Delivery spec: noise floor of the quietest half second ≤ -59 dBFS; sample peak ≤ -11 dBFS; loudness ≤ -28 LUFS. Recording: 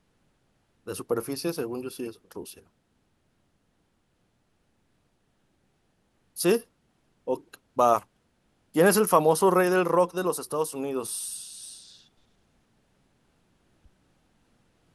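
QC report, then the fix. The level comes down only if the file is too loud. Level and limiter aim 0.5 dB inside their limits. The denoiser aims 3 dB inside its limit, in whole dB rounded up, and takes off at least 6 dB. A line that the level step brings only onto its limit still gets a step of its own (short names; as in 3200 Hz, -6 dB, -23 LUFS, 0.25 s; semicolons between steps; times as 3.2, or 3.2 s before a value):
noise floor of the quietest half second -71 dBFS: OK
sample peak -7.0 dBFS: fail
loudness -25.5 LUFS: fail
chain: gain -3 dB; limiter -11.5 dBFS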